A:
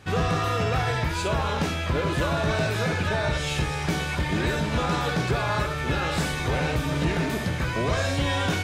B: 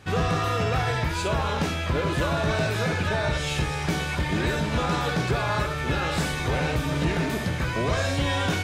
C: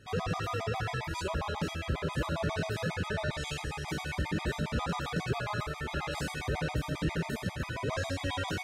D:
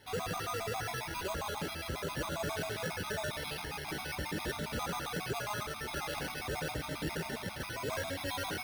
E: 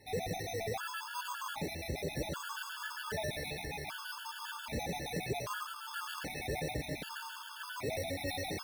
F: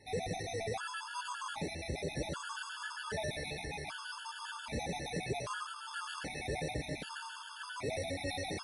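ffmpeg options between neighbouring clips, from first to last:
-af anull
-af "afftfilt=real='re*gt(sin(2*PI*7.4*pts/sr)*(1-2*mod(floor(b*sr/1024/640),2)),0)':imag='im*gt(sin(2*PI*7.4*pts/sr)*(1-2*mod(floor(b*sr/1024/640),2)),0)':win_size=1024:overlap=0.75,volume=-5.5dB"
-filter_complex "[0:a]acrossover=split=3200[a][b];[b]acompressor=threshold=-50dB:ratio=4:attack=1:release=60[c];[a][c]amix=inputs=2:normalize=0,bass=f=250:g=-7,treble=f=4k:g=12,acrusher=samples=6:mix=1:aa=0.000001,volume=-2dB"
-af "afftfilt=real='re*gt(sin(2*PI*0.64*pts/sr)*(1-2*mod(floor(b*sr/1024/880),2)),0)':imag='im*gt(sin(2*PI*0.64*pts/sr)*(1-2*mod(floor(b*sr/1024/880),2)),0)':win_size=1024:overlap=0.75,volume=1dB"
-ar 24000 -c:a libmp3lame -b:a 56k

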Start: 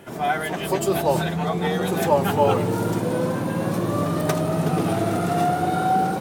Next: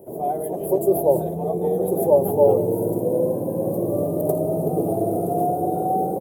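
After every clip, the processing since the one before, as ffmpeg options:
-af "firequalizer=gain_entry='entry(240,0);entry(390,9);entry(580,9);entry(1400,-27);entry(5600,-21);entry(11000,8)':delay=0.05:min_phase=1,volume=-4dB"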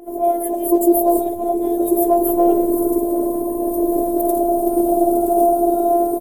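-af "afftfilt=real='hypot(re,im)*cos(PI*b)':imag='0':win_size=512:overlap=0.75,alimiter=level_in=11.5dB:limit=-1dB:release=50:level=0:latency=1,adynamicequalizer=threshold=0.0251:dfrequency=3000:dqfactor=0.7:tfrequency=3000:tqfactor=0.7:attack=5:release=100:ratio=0.375:range=2.5:mode=boostabove:tftype=highshelf,volume=-3dB"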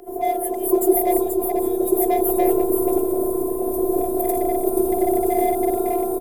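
-filter_complex "[0:a]aecho=1:1:481:0.501,acrossover=split=290|700|6800[a][b][c][d];[b]afreqshift=31[e];[c]asoftclip=type=hard:threshold=-26dB[f];[a][e][f][d]amix=inputs=4:normalize=0"

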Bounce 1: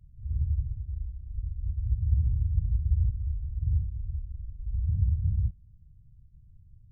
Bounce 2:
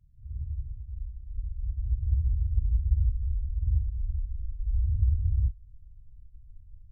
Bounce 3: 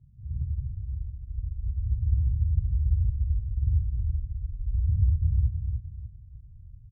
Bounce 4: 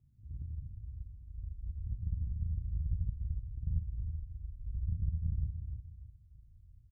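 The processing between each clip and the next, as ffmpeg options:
-af "asubboost=boost=7.5:cutoff=65,volume=-7.5dB"
-filter_complex "[0:a]bandpass=f=160:t=q:w=1.2:csg=0,aecho=1:1:298|596|894|1192:0.398|0.119|0.0358|0.0107,asplit=2[a][b];[b]acompressor=threshold=-40dB:ratio=6,volume=0.5dB[c];[a][c]amix=inputs=2:normalize=0,volume=6.5dB"
-filter_complex "[0:a]lowshelf=f=220:t=q:w=1.5:g=-7,asplit=2[a][b];[b]adelay=37,volume=-6dB[c];[a][c]amix=inputs=2:normalize=0,aeval=exprs='0.1*(cos(1*acos(clip(val(0)/0.1,-1,1)))-cos(1*PI/2))+0.0316*(cos(2*acos(clip(val(0)/0.1,-1,1)))-cos(2*PI/2))':c=same,volume=-4.5dB"

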